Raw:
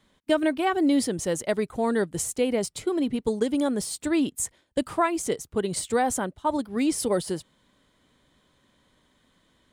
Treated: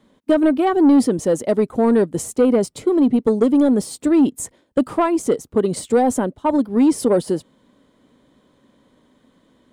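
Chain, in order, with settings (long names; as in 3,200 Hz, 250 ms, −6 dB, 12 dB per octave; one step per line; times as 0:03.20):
octave-band graphic EQ 125/250/500/1,000 Hz +3/+11/+8/+4 dB
soft clipping −7.5 dBFS, distortion −17 dB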